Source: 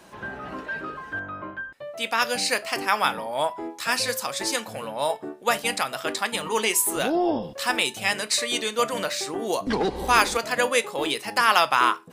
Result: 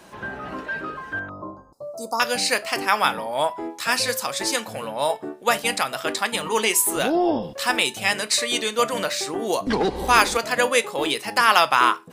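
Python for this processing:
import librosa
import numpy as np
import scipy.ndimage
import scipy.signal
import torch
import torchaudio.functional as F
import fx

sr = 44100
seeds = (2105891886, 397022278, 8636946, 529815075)

y = fx.cheby2_bandstop(x, sr, low_hz=1600.0, high_hz=3400.0, order=4, stop_db=40, at=(1.29, 2.2))
y = y * librosa.db_to_amplitude(2.5)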